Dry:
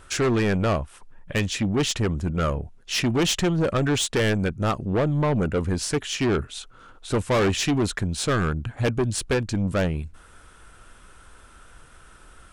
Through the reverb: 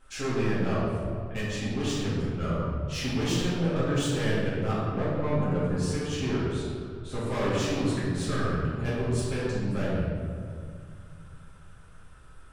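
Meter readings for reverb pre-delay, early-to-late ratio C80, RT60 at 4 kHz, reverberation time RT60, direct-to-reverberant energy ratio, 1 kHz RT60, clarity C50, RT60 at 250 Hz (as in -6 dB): 4 ms, 0.0 dB, 1.2 s, 2.2 s, -10.0 dB, 2.0 s, -2.0 dB, 2.9 s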